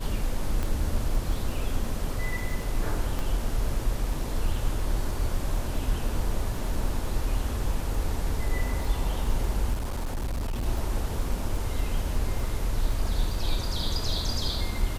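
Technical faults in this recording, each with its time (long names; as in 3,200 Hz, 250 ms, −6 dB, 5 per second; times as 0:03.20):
surface crackle 21 per second −33 dBFS
0:00.63: click −17 dBFS
0:03.19: click
0:09.73–0:10.66: clipping −26 dBFS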